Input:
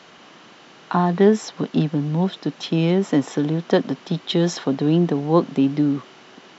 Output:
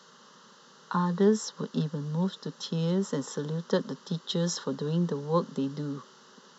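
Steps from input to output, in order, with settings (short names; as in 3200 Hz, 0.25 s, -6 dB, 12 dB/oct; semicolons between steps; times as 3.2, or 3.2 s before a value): HPF 61 Hz; high shelf 2500 Hz +8 dB; fixed phaser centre 470 Hz, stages 8; gain -7 dB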